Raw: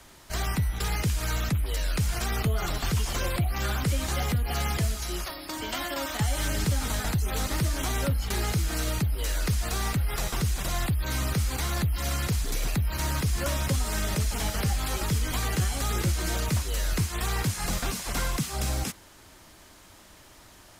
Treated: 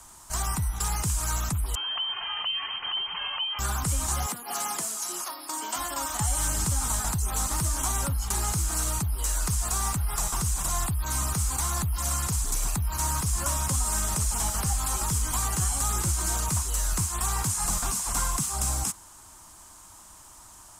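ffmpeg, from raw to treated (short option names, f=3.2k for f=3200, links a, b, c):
-filter_complex "[0:a]asettb=1/sr,asplit=3[a][b][c];[a]atrim=end=1.754[d];[b]atrim=start=1.75:end=3.59,asetpts=PTS-STARTPTS,afade=t=in:d=0.004:c=qsin,afade=t=out:st=1.836:d=0.004:c=qsin,lowpass=f=2.7k:t=q:w=0.5098,lowpass=f=2.7k:t=q:w=0.6013,lowpass=f=2.7k:t=q:w=0.9,lowpass=f=2.7k:t=q:w=2.563,afreqshift=-3200[e];[c]atrim=start=3.586[f];[d][e]acrossfade=d=0.004:c1=hsin:c2=qsin[g];[g][f]acrossfade=d=0.004:c1=qsin:c2=hsin,asettb=1/sr,asplit=3[h][i][j];[h]atrim=end=4.264[k];[i]atrim=start=4.26:end=5.76,asetpts=PTS-STARTPTS,afade=t=in:d=0.004:c=qsin,afade=t=out:st=1.496:d=0.004:c=qsin,highpass=f=230:w=0.5412,highpass=f=230:w=1.3066[l];[j]atrim=start=5.756[m];[k][l]acrossfade=d=0.004:c1=hsin:c2=qsin[n];[n][m]acrossfade=d=0.004:c1=qsin:c2=hsin,equalizer=f=125:t=o:w=1:g=-3,equalizer=f=250:t=o:w=1:g=-3,equalizer=f=500:t=o:w=1:g=-10,equalizer=f=1k:t=o:w=1:g=9,equalizer=f=2k:t=o:w=1:g=-8,equalizer=f=4k:t=o:w=1:g=-6,equalizer=f=8k:t=o:w=1:g=12"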